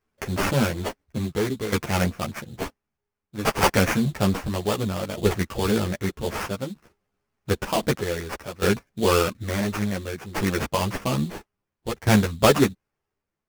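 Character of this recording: aliases and images of a low sample rate 3.9 kHz, jitter 20%; tremolo saw down 0.58 Hz, depth 80%; a shimmering, thickened sound

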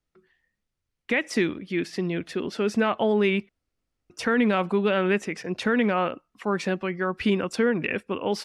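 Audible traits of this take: noise floor -82 dBFS; spectral tilt -4.5 dB/octave

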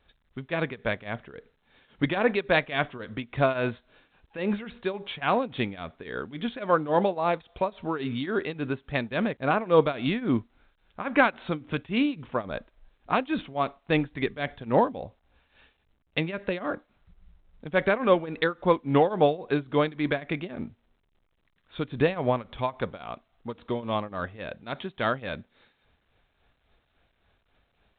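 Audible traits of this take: tremolo triangle 3.6 Hz, depth 90%; A-law

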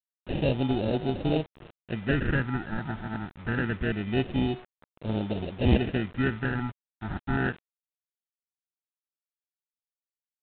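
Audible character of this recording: aliases and images of a low sample rate 1.1 kHz, jitter 0%; phasing stages 4, 0.25 Hz, lowest notch 480–1800 Hz; a quantiser's noise floor 8-bit, dither none; G.726

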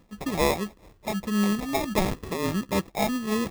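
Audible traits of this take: phasing stages 6, 1.6 Hz, lowest notch 460–1000 Hz; aliases and images of a low sample rate 1.5 kHz, jitter 0%; random flutter of the level

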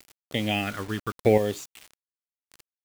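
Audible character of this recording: chopped level 0.8 Hz, depth 60%, duty 10%; phasing stages 8, 0.78 Hz, lowest notch 590–1600 Hz; a quantiser's noise floor 8-bit, dither none

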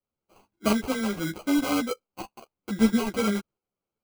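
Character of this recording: aliases and images of a low sample rate 1.8 kHz, jitter 0%; tremolo saw up 1.4 Hz, depth 45%; a shimmering, thickened sound

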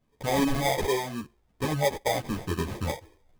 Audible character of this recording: phasing stages 4, 0.89 Hz, lowest notch 190–1500 Hz; aliases and images of a low sample rate 1.4 kHz, jitter 0%; a shimmering, thickened sound

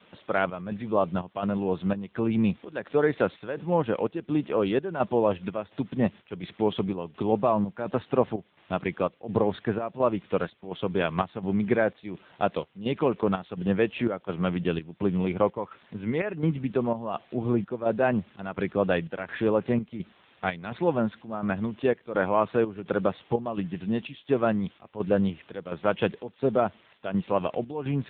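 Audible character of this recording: a quantiser's noise floor 8-bit, dither triangular; chopped level 1.4 Hz, depth 65%, duty 70%; AMR-NB

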